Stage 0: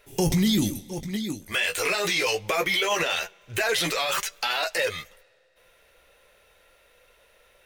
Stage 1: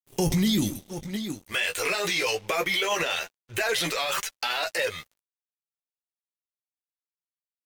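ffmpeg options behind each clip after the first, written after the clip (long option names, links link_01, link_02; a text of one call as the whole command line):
ffmpeg -i in.wav -af "aeval=exprs='sgn(val(0))*max(abs(val(0))-0.00501,0)':channel_layout=same,volume=-1dB" out.wav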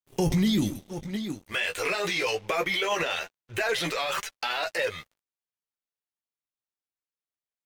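ffmpeg -i in.wav -af "highshelf=frequency=4800:gain=-8.5" out.wav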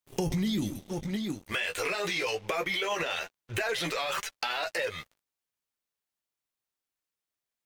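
ffmpeg -i in.wav -af "acompressor=threshold=-36dB:ratio=2.5,volume=4.5dB" out.wav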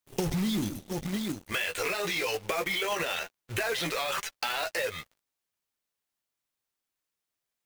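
ffmpeg -i in.wav -af "acrusher=bits=2:mode=log:mix=0:aa=0.000001" out.wav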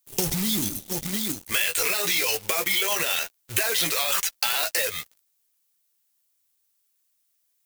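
ffmpeg -i in.wav -af "crystalizer=i=4:c=0" out.wav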